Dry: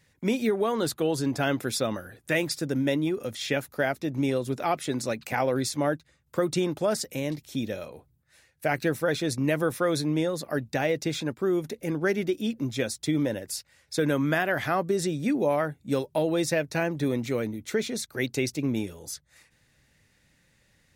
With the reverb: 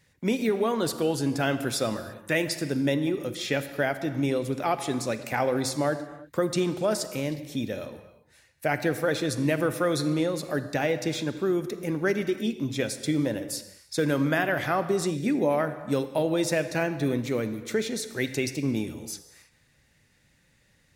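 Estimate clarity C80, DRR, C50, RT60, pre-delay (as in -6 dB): 12.5 dB, 10.5 dB, 11.0 dB, no single decay rate, 27 ms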